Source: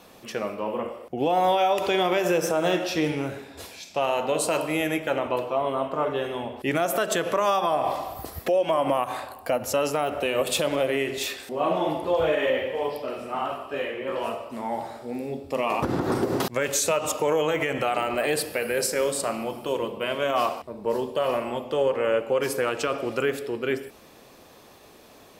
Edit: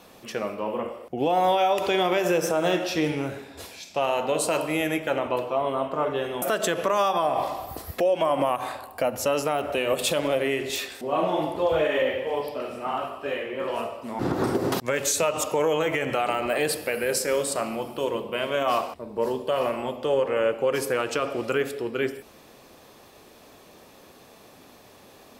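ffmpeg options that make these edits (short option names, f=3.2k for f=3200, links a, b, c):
-filter_complex "[0:a]asplit=3[a][b][c];[a]atrim=end=6.422[d];[b]atrim=start=6.898:end=14.672[e];[c]atrim=start=15.868[f];[d][e]acrossfade=d=0.004:c1=hsin:c2=hsin[g];[g][f]acrossfade=d=0.004:c1=hsin:c2=hsin"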